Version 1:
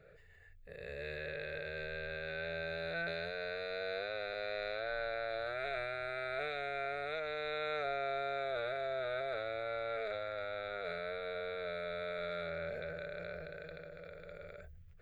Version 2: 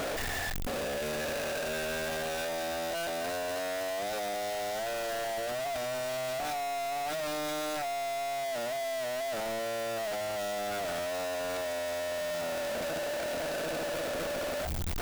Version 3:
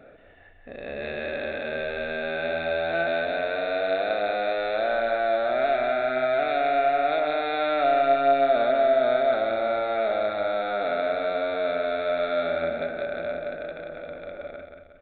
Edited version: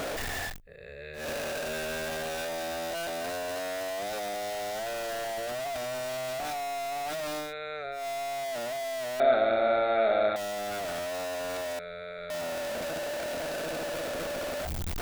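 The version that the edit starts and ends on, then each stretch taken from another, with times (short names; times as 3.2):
2
0.53–1.21 from 1, crossfade 0.16 s
7.46–7.99 from 1, crossfade 0.16 s
9.2–10.36 from 3
11.79–12.3 from 1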